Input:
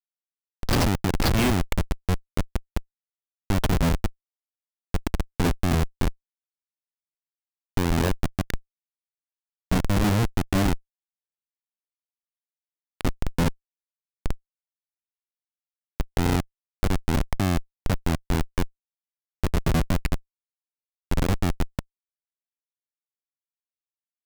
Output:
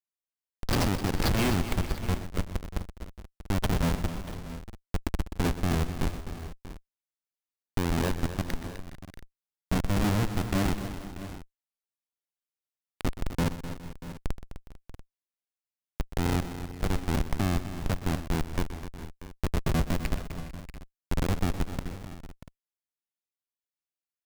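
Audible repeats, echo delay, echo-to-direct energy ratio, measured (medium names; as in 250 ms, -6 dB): 6, 124 ms, -7.5 dB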